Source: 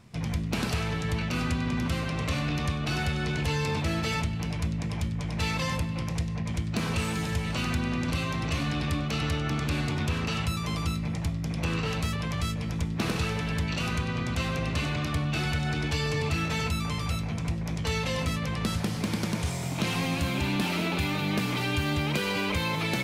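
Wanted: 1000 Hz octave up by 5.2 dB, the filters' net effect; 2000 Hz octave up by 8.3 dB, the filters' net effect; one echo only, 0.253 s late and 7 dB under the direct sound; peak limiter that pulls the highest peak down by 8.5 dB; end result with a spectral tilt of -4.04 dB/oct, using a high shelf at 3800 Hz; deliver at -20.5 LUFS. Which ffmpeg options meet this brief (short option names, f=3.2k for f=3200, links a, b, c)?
-af "equalizer=f=1k:t=o:g=3.5,equalizer=f=2k:t=o:g=7.5,highshelf=f=3.8k:g=7.5,alimiter=limit=-20.5dB:level=0:latency=1,aecho=1:1:253:0.447,volume=7.5dB"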